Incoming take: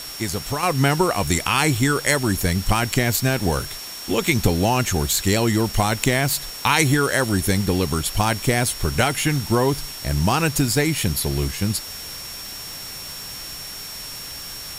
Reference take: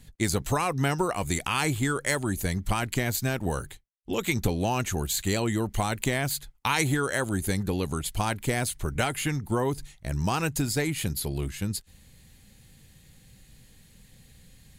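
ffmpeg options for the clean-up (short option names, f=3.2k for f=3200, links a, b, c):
-af "adeclick=t=4,bandreject=f=5.5k:w=30,afwtdn=0.018,asetnsamples=n=441:p=0,asendcmd='0.63 volume volume -7.5dB',volume=0dB"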